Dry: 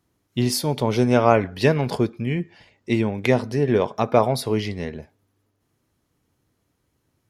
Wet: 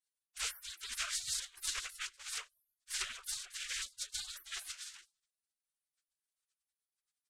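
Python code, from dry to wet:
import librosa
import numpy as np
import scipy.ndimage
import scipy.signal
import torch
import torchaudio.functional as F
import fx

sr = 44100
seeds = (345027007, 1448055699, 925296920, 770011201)

y = fx.pitch_ramps(x, sr, semitones=4.5, every_ms=198)
y = fx.peak_eq(y, sr, hz=1200.0, db=-3.0, octaves=0.77)
y = y + 0.71 * np.pad(y, (int(4.0 * sr / 1000.0), 0))[:len(y)]
y = fx.noise_vocoder(y, sr, seeds[0], bands=4)
y = fx.spec_gate(y, sr, threshold_db=-30, keep='weak')
y = y * librosa.db_to_amplitude(2.0)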